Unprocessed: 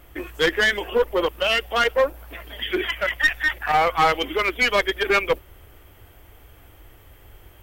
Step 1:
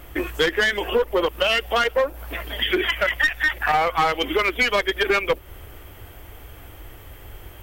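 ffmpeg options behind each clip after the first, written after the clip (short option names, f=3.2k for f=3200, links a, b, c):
-af "acompressor=threshold=-25dB:ratio=4,volume=7dB"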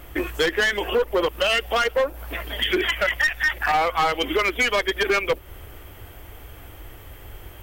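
-af "volume=15dB,asoftclip=hard,volume=-15dB"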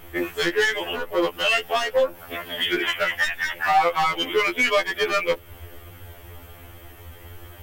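-af "afftfilt=real='re*2*eq(mod(b,4),0)':imag='im*2*eq(mod(b,4),0)':win_size=2048:overlap=0.75,volume=2dB"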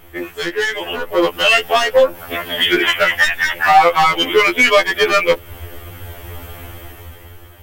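-af "dynaudnorm=f=220:g=9:m=13dB"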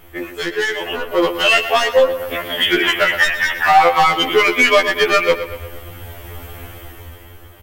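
-filter_complex "[0:a]asplit=2[a][b];[b]adelay=119,lowpass=f=4.4k:p=1,volume=-11dB,asplit=2[c][d];[d]adelay=119,lowpass=f=4.4k:p=1,volume=0.53,asplit=2[e][f];[f]adelay=119,lowpass=f=4.4k:p=1,volume=0.53,asplit=2[g][h];[h]adelay=119,lowpass=f=4.4k:p=1,volume=0.53,asplit=2[i][j];[j]adelay=119,lowpass=f=4.4k:p=1,volume=0.53,asplit=2[k][l];[l]adelay=119,lowpass=f=4.4k:p=1,volume=0.53[m];[a][c][e][g][i][k][m]amix=inputs=7:normalize=0,volume=-1dB"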